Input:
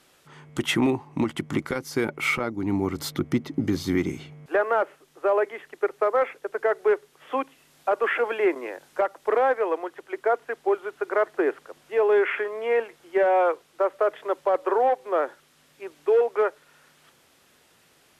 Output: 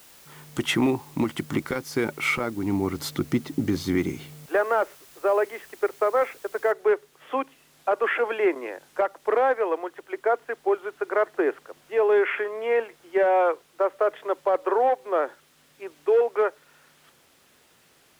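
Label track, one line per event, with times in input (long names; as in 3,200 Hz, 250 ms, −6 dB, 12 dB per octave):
6.720000	6.720000	noise floor change −52 dB −69 dB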